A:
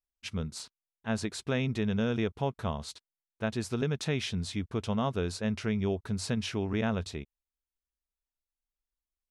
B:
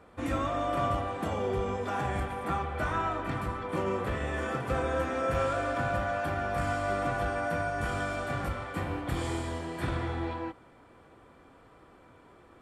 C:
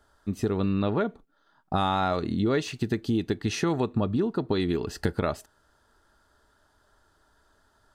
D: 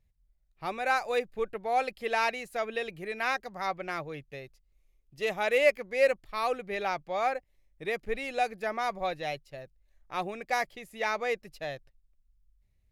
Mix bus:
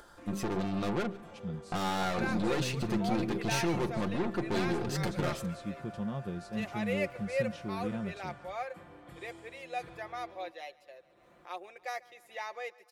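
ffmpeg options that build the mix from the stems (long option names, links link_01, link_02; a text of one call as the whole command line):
ffmpeg -i stem1.wav -i stem2.wav -i stem3.wav -i stem4.wav -filter_complex "[0:a]equalizer=frequency=140:width=0.32:gain=12.5,adelay=1100,volume=-16.5dB[link_01];[1:a]volume=-19.5dB[link_02];[2:a]bandreject=frequency=65.9:width_type=h:width=4,bandreject=frequency=131.8:width_type=h:width=4,bandreject=frequency=197.7:width_type=h:width=4,bandreject=frequency=263.6:width_type=h:width=4,bandreject=frequency=329.5:width_type=h:width=4,bandreject=frequency=395.4:width_type=h:width=4,aeval=exprs='(tanh(44.7*val(0)+0.7)-tanh(0.7))/44.7':channel_layout=same,volume=3dB,asplit=2[link_03][link_04];[link_04]volume=-21dB[link_05];[3:a]highpass=frequency=370:width=0.5412,highpass=frequency=370:width=1.3066,adelay=1350,volume=-10.5dB,asplit=2[link_06][link_07];[link_07]volume=-22.5dB[link_08];[link_05][link_08]amix=inputs=2:normalize=0,aecho=0:1:143|286|429|572|715|858|1001|1144:1|0.55|0.303|0.166|0.0915|0.0503|0.0277|0.0152[link_09];[link_01][link_02][link_03][link_06][link_09]amix=inputs=5:normalize=0,lowshelf=frequency=61:gain=-6.5,aecho=1:1:5.7:0.54,acompressor=mode=upward:threshold=-47dB:ratio=2.5" out.wav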